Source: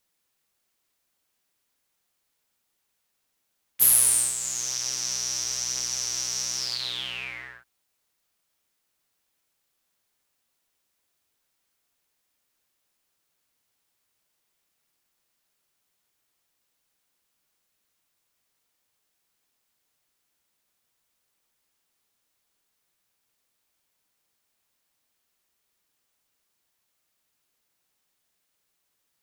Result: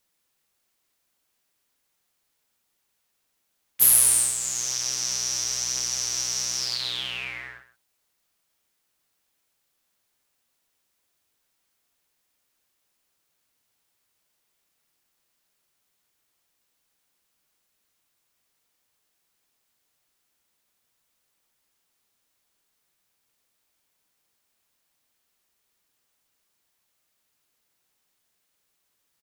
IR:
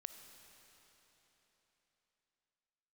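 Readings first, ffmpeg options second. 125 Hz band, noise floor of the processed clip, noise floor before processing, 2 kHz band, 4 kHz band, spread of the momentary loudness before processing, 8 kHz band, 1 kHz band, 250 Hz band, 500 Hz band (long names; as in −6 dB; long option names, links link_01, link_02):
+2.0 dB, −75 dBFS, −76 dBFS, +1.5 dB, +1.5 dB, 14 LU, +1.5 dB, +1.5 dB, +1.5 dB, +1.5 dB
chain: -af "aecho=1:1:129:0.2,volume=1.5dB"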